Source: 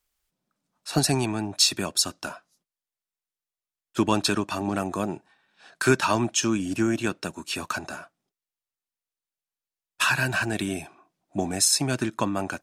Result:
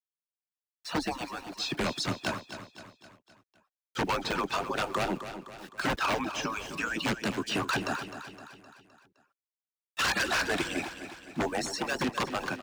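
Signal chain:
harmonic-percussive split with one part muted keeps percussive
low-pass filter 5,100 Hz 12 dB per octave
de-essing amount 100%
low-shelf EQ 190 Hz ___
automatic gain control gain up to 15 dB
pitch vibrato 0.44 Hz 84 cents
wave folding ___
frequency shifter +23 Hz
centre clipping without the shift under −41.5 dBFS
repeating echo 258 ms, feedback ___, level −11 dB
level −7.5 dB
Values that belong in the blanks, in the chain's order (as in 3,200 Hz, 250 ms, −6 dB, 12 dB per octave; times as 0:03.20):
+2.5 dB, −14.5 dBFS, 51%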